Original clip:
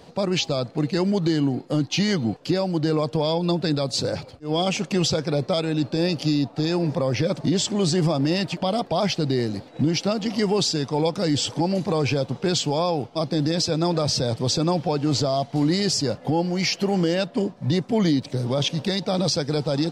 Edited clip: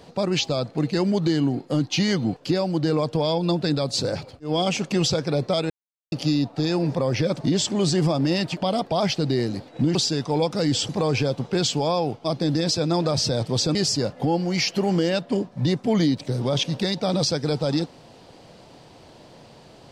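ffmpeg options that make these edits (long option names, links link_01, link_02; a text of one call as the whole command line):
ffmpeg -i in.wav -filter_complex "[0:a]asplit=6[link_01][link_02][link_03][link_04][link_05][link_06];[link_01]atrim=end=5.7,asetpts=PTS-STARTPTS,afade=type=out:start_time=5.696:duration=0.004:curve=hsin[link_07];[link_02]atrim=start=5.7:end=6.12,asetpts=PTS-STARTPTS,volume=0[link_08];[link_03]atrim=start=6.12:end=9.952,asetpts=PTS-STARTPTS,afade=type=in:duration=0.004:curve=hsin[link_09];[link_04]atrim=start=10.578:end=11.522[link_10];[link_05]atrim=start=11.798:end=14.662[link_11];[link_06]atrim=start=15.798[link_12];[link_07][link_08][link_09]concat=n=3:v=0:a=1[link_13];[link_13][link_10]acrossfade=duration=0.004:curve1=hsin:curve2=hsin[link_14];[link_14][link_11]acrossfade=duration=0.004:curve1=hsin:curve2=hsin[link_15];[link_15][link_12]acrossfade=duration=0.004:curve1=hsin:curve2=hsin" out.wav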